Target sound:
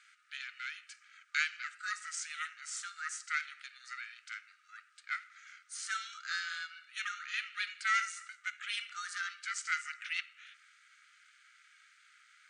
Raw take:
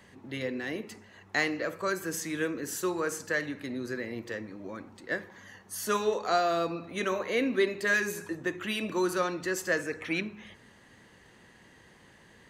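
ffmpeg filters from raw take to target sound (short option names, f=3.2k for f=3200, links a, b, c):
-af "acrusher=bits=11:mix=0:aa=0.000001,aeval=exprs='val(0)*sin(2*PI*310*n/s)':c=same,afftfilt=real='re*between(b*sr/4096,1200,9500)':imag='im*between(b*sr/4096,1200,9500)':win_size=4096:overlap=0.75"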